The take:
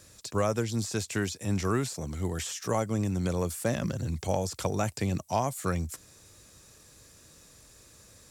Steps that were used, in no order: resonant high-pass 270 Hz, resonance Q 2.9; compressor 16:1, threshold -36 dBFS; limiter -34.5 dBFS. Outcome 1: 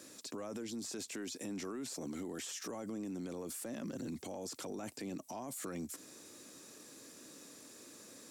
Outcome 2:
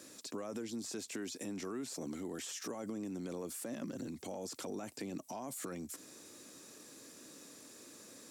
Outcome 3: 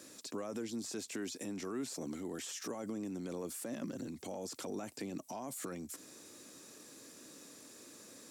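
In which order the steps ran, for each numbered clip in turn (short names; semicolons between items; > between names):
resonant high-pass > limiter > compressor; limiter > resonant high-pass > compressor; limiter > compressor > resonant high-pass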